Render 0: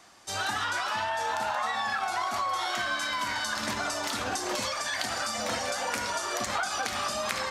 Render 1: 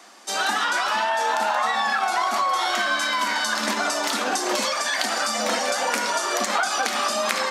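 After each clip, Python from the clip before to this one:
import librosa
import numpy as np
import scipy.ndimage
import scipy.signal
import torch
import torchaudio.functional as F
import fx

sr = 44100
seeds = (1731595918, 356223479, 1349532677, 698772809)

y = scipy.signal.sosfilt(scipy.signal.ellip(4, 1.0, 50, 210.0, 'highpass', fs=sr, output='sos'), x)
y = y * librosa.db_to_amplitude(8.0)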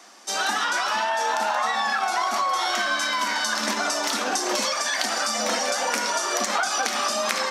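y = fx.peak_eq(x, sr, hz=5700.0, db=5.5, octaves=0.29)
y = y * librosa.db_to_amplitude(-1.5)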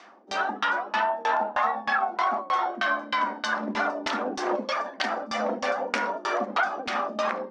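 y = fx.filter_lfo_lowpass(x, sr, shape='saw_down', hz=3.2, low_hz=230.0, high_hz=3600.0, q=1.0)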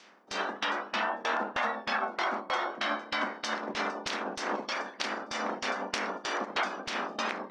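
y = fx.spec_clip(x, sr, under_db=18)
y = y * librosa.db_to_amplitude(-5.5)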